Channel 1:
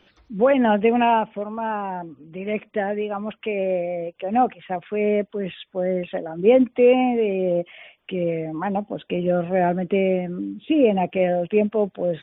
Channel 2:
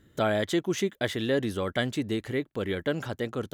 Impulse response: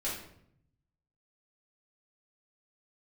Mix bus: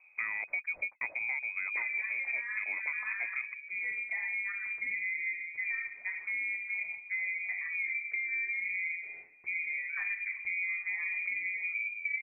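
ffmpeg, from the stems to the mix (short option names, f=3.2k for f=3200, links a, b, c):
-filter_complex "[0:a]lowpass=1.7k,acompressor=threshold=-21dB:ratio=6,adelay=1350,volume=-9dB,asplit=2[a][b];[b]volume=-4dB[c];[1:a]volume=-0.5dB[d];[2:a]atrim=start_sample=2205[e];[c][e]afir=irnorm=-1:irlink=0[f];[a][d][f]amix=inputs=3:normalize=0,equalizer=f=1.6k:w=0.52:g=-8,lowpass=f=2.2k:t=q:w=0.5098,lowpass=f=2.2k:t=q:w=0.6013,lowpass=f=2.2k:t=q:w=0.9,lowpass=f=2.2k:t=q:w=2.563,afreqshift=-2600,acompressor=threshold=-31dB:ratio=10"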